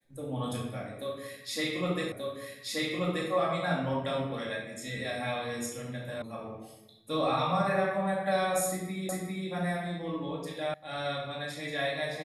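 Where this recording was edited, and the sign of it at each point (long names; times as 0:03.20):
0:02.12: the same again, the last 1.18 s
0:06.22: cut off before it has died away
0:09.09: the same again, the last 0.4 s
0:10.74: cut off before it has died away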